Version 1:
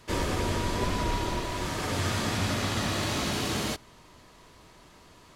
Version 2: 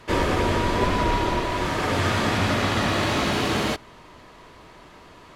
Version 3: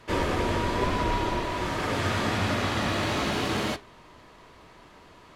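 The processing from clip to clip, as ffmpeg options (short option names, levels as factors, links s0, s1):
-af "bass=f=250:g=-4,treble=f=4000:g=-10,volume=2.66"
-af "flanger=delay=9.1:depth=9.1:regen=-72:speed=0.83:shape=sinusoidal"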